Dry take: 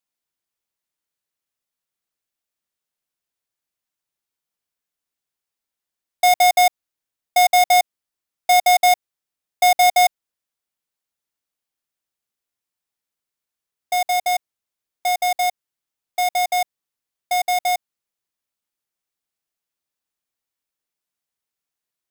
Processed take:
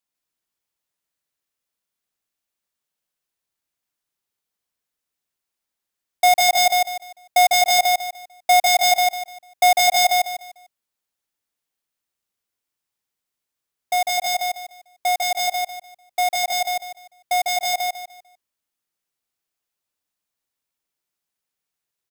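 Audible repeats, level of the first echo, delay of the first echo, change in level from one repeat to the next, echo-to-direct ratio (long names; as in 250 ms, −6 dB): 3, −3.0 dB, 149 ms, −11.0 dB, −2.5 dB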